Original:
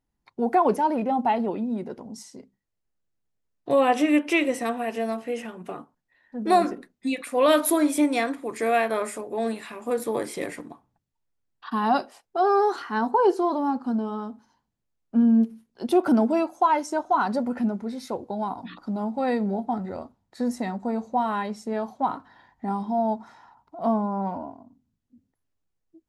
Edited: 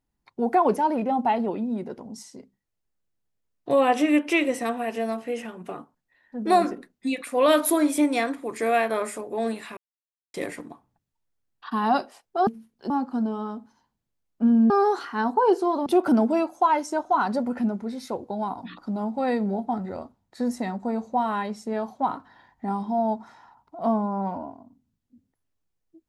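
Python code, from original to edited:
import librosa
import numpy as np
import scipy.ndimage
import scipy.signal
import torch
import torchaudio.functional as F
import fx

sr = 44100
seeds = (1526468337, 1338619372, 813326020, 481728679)

y = fx.edit(x, sr, fx.silence(start_s=9.77, length_s=0.57),
    fx.swap(start_s=12.47, length_s=1.16, other_s=15.43, other_length_s=0.43), tone=tone)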